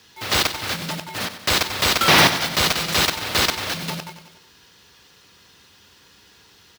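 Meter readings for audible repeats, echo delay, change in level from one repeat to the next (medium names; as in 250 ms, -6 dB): 4, 93 ms, -4.5 dB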